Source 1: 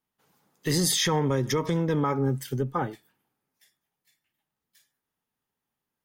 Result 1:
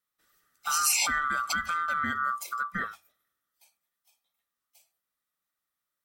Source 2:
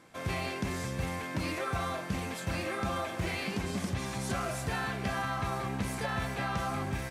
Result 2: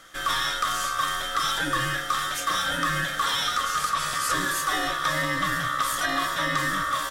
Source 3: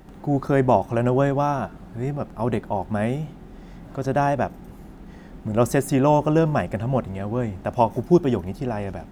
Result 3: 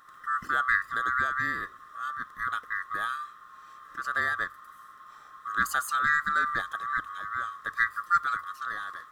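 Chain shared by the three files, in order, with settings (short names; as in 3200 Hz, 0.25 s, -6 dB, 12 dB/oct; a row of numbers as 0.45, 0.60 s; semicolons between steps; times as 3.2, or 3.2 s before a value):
band-swap scrambler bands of 1000 Hz; high shelf 2500 Hz +8 dB; notches 50/100 Hz; normalise peaks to -12 dBFS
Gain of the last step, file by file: -6.0, +5.5, -10.0 dB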